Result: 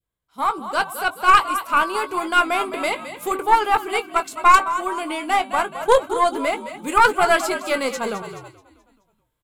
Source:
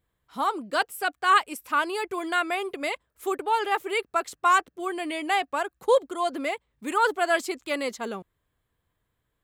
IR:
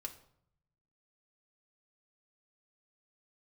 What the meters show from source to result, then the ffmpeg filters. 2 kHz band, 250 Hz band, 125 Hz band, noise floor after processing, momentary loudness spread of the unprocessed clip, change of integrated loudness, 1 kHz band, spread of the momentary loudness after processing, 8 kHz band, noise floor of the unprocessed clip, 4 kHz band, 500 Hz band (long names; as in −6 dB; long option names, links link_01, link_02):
+5.5 dB, +4.0 dB, can't be measured, −71 dBFS, 10 LU, +6.5 dB, +7.5 dB, 10 LU, +7.0 dB, −78 dBFS, +5.0 dB, +5.0 dB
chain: -filter_complex "[0:a]equalizer=frequency=11000:width=0.48:gain=4.5,asplit=2[link_01][link_02];[link_02]adelay=19,volume=-10dB[link_03];[link_01][link_03]amix=inputs=2:normalize=0,adynamicequalizer=threshold=0.0178:dfrequency=1100:dqfactor=1.2:tfrequency=1100:tqfactor=1.2:attack=5:release=100:ratio=0.375:range=3.5:mode=boostabove:tftype=bell,bandreject=frequency=384.9:width_type=h:width=4,bandreject=frequency=769.8:width_type=h:width=4,bandreject=frequency=1154.7:width_type=h:width=4,bandreject=frequency=1539.6:width_type=h:width=4,bandreject=frequency=1924.5:width_type=h:width=4,bandreject=frequency=2309.4:width_type=h:width=4,bandreject=frequency=2694.3:width_type=h:width=4,bandreject=frequency=3079.2:width_type=h:width=4,bandreject=frequency=3464.1:width_type=h:width=4,bandreject=frequency=3849:width_type=h:width=4,bandreject=frequency=4233.9:width_type=h:width=4,asplit=2[link_04][link_05];[link_05]asplit=5[link_06][link_07][link_08][link_09][link_10];[link_06]adelay=214,afreqshift=-50,volume=-11.5dB[link_11];[link_07]adelay=428,afreqshift=-100,volume=-18.1dB[link_12];[link_08]adelay=642,afreqshift=-150,volume=-24.6dB[link_13];[link_09]adelay=856,afreqshift=-200,volume=-31.2dB[link_14];[link_10]adelay=1070,afreqshift=-250,volume=-37.7dB[link_15];[link_11][link_12][link_13][link_14][link_15]amix=inputs=5:normalize=0[link_16];[link_04][link_16]amix=inputs=2:normalize=0,dynaudnorm=framelen=120:gausssize=17:maxgain=10dB,bandreject=frequency=1800:width=8.5,agate=range=-8dB:threshold=-37dB:ratio=16:detection=peak,aeval=exprs='0.841*(cos(1*acos(clip(val(0)/0.841,-1,1)))-cos(1*PI/2))+0.133*(cos(4*acos(clip(val(0)/0.841,-1,1)))-cos(4*PI/2))+0.0335*(cos(6*acos(clip(val(0)/0.841,-1,1)))-cos(6*PI/2))':channel_layout=same,volume=-1dB"